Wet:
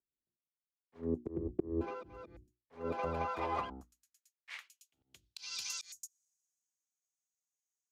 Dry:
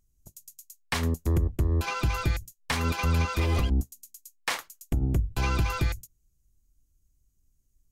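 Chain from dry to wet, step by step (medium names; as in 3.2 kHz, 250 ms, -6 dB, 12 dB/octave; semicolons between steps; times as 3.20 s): hum notches 60/120/180/240/300/360 Hz; slow attack 220 ms; band-pass sweep 360 Hz -> 6.4 kHz, 2.49–5.77 s; three bands expanded up and down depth 40%; trim +3.5 dB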